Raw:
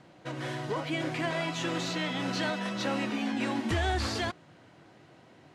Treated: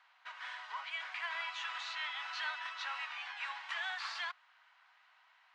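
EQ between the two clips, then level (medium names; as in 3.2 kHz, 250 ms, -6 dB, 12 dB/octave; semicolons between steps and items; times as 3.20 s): steep high-pass 950 Hz 36 dB/octave; low-pass 3.6 kHz 12 dB/octave; -3.0 dB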